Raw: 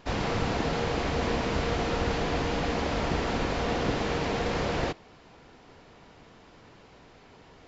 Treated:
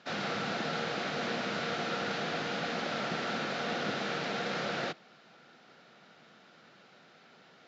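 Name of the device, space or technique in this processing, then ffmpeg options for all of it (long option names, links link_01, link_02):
television speaker: -af "highpass=frequency=170:width=0.5412,highpass=frequency=170:width=1.3066,equalizer=frequency=290:width_type=q:width=4:gain=-8,equalizer=frequency=430:width_type=q:width=4:gain=-6,equalizer=frequency=990:width_type=q:width=4:gain=-9,equalizer=frequency=1400:width_type=q:width=4:gain=7,equalizer=frequency=3800:width_type=q:width=4:gain=4,lowpass=frequency=6700:width=0.5412,lowpass=frequency=6700:width=1.3066,volume=-3dB"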